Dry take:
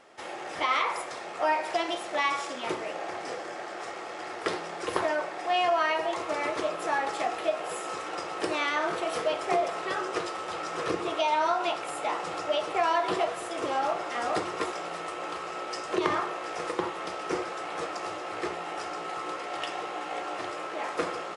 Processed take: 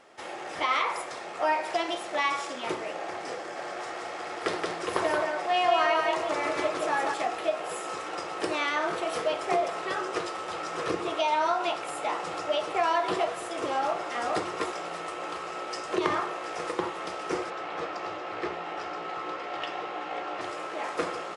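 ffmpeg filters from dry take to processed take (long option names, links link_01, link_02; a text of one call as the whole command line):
ffmpeg -i in.wav -filter_complex "[0:a]asettb=1/sr,asplit=3[link_01][link_02][link_03];[link_01]atrim=end=3.394[link_04];[link_02]atrim=start=3.39:end=7.14,asetpts=PTS-STARTPTS,afade=type=in:duration=0.004:curve=qsin,afade=type=out:start_time=3.746:duration=0.004:curve=qsin,aecho=1:1:175:0.708,atrim=end_sample=165375[link_05];[link_03]atrim=start=7.136[link_06];[link_04][link_05]acrossfade=duration=0.004:curve1=hsin:curve2=qsin[link_07];[link_07][link_06]acrossfade=duration=0.004:curve1=qsin:curve2=hsin,asettb=1/sr,asplit=3[link_08][link_09][link_10];[link_08]atrim=end=17.504[link_11];[link_09]atrim=start=17.5:end=20.41,asetpts=PTS-STARTPTS,afade=type=in:duration=0.004:curve=qsin,afade=type=out:start_time=2.906:duration=0.004:curve=qsin,lowpass=4300[link_12];[link_10]atrim=start=20.406[link_13];[link_11][link_12]acrossfade=duration=0.004:curve1=hsin:curve2=qsin[link_14];[link_14][link_13]acrossfade=duration=0.004:curve1=qsin:curve2=hsin" out.wav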